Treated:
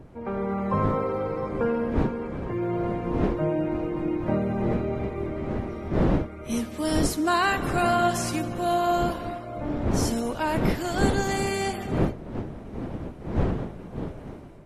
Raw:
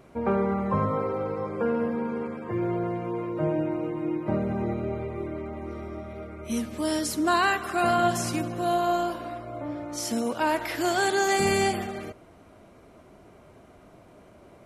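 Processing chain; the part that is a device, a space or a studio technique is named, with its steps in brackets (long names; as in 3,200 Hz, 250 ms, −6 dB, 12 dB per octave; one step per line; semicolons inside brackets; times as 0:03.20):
smartphone video outdoors (wind on the microphone 310 Hz −29 dBFS; automatic gain control gain up to 10 dB; level −8 dB; AAC 48 kbit/s 48,000 Hz)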